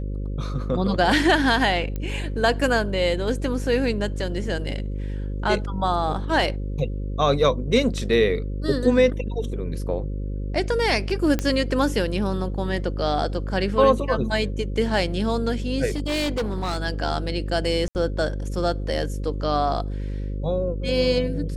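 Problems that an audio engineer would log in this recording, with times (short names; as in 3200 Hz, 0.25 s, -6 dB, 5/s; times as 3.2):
buzz 50 Hz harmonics 11 -28 dBFS
1.96 pop -17 dBFS
11.39 pop -10 dBFS
15.89–16.78 clipped -21 dBFS
17.88–17.95 gap 69 ms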